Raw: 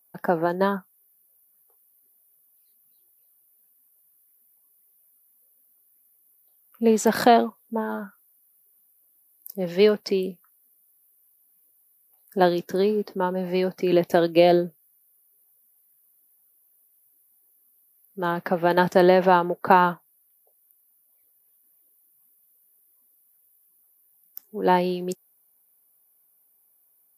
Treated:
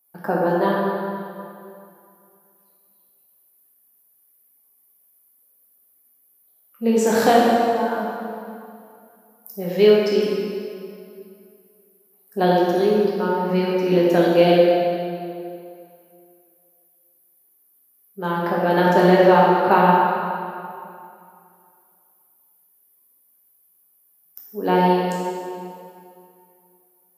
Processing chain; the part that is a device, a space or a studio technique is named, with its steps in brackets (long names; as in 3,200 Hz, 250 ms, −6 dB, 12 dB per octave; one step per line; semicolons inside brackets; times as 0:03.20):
stairwell (convolution reverb RT60 2.5 s, pre-delay 8 ms, DRR −5.5 dB)
level −2.5 dB